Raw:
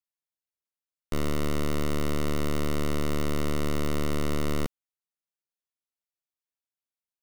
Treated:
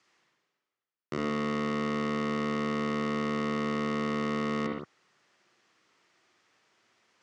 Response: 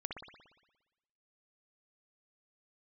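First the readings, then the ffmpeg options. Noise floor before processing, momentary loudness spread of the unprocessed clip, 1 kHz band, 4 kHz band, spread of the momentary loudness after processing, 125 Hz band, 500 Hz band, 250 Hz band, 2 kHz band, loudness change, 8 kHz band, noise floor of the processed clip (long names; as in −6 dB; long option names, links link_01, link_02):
below −85 dBFS, 2 LU, +3.5 dB, −3.0 dB, 4 LU, −7.5 dB, −0.5 dB, +1.0 dB, +2.5 dB, −0.5 dB, −11.0 dB, below −85 dBFS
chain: -filter_complex "[0:a]areverse,acompressor=mode=upward:threshold=-39dB:ratio=2.5,areverse,highpass=frequency=110:width=0.5412,highpass=frequency=110:width=1.3066,equalizer=frequency=360:width_type=q:width=4:gain=6,equalizer=frequency=1200:width_type=q:width=4:gain=5,equalizer=frequency=1900:width_type=q:width=4:gain=5,equalizer=frequency=3800:width_type=q:width=4:gain=-4,lowpass=frequency=6100:width=0.5412,lowpass=frequency=6100:width=1.3066[link_01];[1:a]atrim=start_sample=2205,afade=type=out:start_time=0.23:duration=0.01,atrim=end_sample=10584[link_02];[link_01][link_02]afir=irnorm=-1:irlink=0"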